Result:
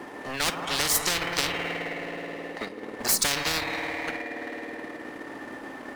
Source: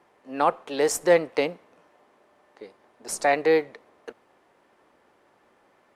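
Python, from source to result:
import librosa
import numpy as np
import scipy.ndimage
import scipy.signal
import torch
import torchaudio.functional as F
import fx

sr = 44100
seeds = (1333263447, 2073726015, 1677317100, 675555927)

y = fx.rev_spring(x, sr, rt60_s=2.6, pass_ms=(53,), chirp_ms=20, drr_db=6.0)
y = fx.power_curve(y, sr, exponent=0.7)
y = fx.noise_reduce_blind(y, sr, reduce_db=10)
y = fx.small_body(y, sr, hz=(270.0, 1800.0), ring_ms=45, db=13)
y = fx.transient(y, sr, attack_db=7, sustain_db=-7)
y = fx.spectral_comp(y, sr, ratio=10.0)
y = y * 10.0 ** (-8.5 / 20.0)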